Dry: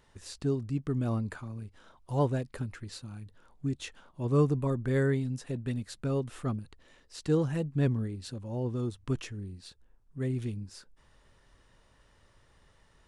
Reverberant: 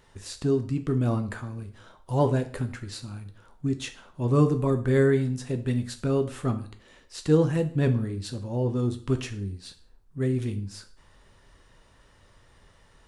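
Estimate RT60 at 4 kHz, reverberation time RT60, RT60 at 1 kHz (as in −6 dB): 0.40 s, 0.45 s, 0.45 s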